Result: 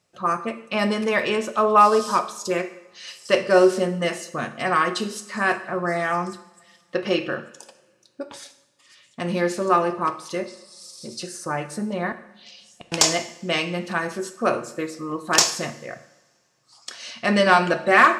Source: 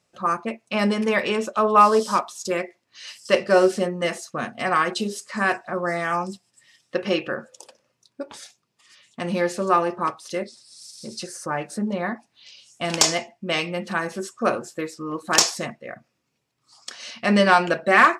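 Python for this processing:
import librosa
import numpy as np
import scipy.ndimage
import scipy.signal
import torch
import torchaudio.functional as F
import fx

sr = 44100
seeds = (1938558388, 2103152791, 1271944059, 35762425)

y = fx.gate_flip(x, sr, shuts_db=-27.0, range_db=-35, at=(12.12, 12.92))
y = fx.rev_double_slope(y, sr, seeds[0], early_s=0.76, late_s=2.9, knee_db=-24, drr_db=9.5)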